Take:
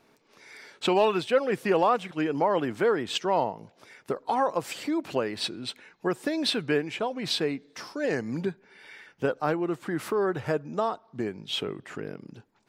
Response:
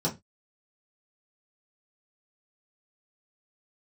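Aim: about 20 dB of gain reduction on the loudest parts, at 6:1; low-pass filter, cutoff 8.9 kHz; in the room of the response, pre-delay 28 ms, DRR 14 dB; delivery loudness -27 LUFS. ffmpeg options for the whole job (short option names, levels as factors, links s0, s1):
-filter_complex "[0:a]lowpass=8900,acompressor=threshold=0.01:ratio=6,asplit=2[s0][s1];[1:a]atrim=start_sample=2205,adelay=28[s2];[s1][s2]afir=irnorm=-1:irlink=0,volume=0.0794[s3];[s0][s3]amix=inputs=2:normalize=0,volume=6.31"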